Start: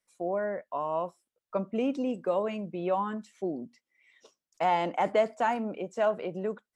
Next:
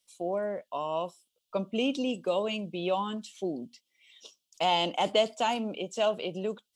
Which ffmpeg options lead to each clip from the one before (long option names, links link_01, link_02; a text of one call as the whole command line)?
ffmpeg -i in.wav -af "highshelf=frequency=2400:width_type=q:width=3:gain=9" out.wav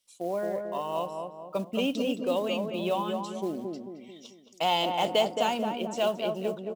ffmpeg -i in.wav -filter_complex "[0:a]acrusher=bits=6:mode=log:mix=0:aa=0.000001,asplit=2[link_01][link_02];[link_02]adelay=220,lowpass=frequency=1300:poles=1,volume=-4dB,asplit=2[link_03][link_04];[link_04]adelay=220,lowpass=frequency=1300:poles=1,volume=0.5,asplit=2[link_05][link_06];[link_06]adelay=220,lowpass=frequency=1300:poles=1,volume=0.5,asplit=2[link_07][link_08];[link_08]adelay=220,lowpass=frequency=1300:poles=1,volume=0.5,asplit=2[link_09][link_10];[link_10]adelay=220,lowpass=frequency=1300:poles=1,volume=0.5,asplit=2[link_11][link_12];[link_12]adelay=220,lowpass=frequency=1300:poles=1,volume=0.5[link_13];[link_01][link_03][link_05][link_07][link_09][link_11][link_13]amix=inputs=7:normalize=0" out.wav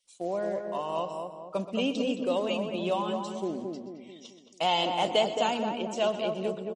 ffmpeg -i in.wav -af "aecho=1:1:126:0.211" -ar 44100 -c:a libmp3lame -b:a 40k out.mp3